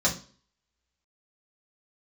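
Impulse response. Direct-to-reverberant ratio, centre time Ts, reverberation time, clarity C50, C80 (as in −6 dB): −6.0 dB, 16 ms, 0.40 s, 11.5 dB, 17.0 dB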